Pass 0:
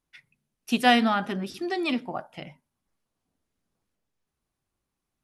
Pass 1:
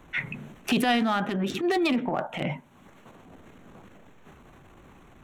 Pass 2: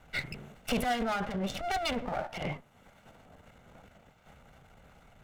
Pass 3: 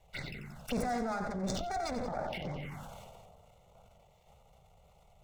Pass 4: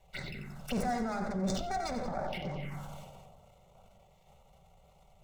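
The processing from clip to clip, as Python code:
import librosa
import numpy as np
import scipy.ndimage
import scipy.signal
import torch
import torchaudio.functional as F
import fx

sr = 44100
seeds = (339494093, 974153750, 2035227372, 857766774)

y1 = fx.wiener(x, sr, points=9)
y1 = fx.transient(y1, sr, attack_db=-12, sustain_db=7)
y1 = fx.band_squash(y1, sr, depth_pct=100)
y1 = y1 * librosa.db_to_amplitude(3.5)
y2 = fx.lower_of_two(y1, sr, delay_ms=1.4)
y2 = y2 * librosa.db_to_amplitude(-3.5)
y3 = fx.echo_feedback(y2, sr, ms=90, feedback_pct=42, wet_db=-9.5)
y3 = fx.env_phaser(y3, sr, low_hz=230.0, high_hz=3000.0, full_db=-30.0)
y3 = fx.sustainer(y3, sr, db_per_s=24.0)
y3 = y3 * librosa.db_to_amplitude(-4.0)
y4 = fx.room_shoebox(y3, sr, seeds[0], volume_m3=3800.0, walls='furnished', distance_m=1.1)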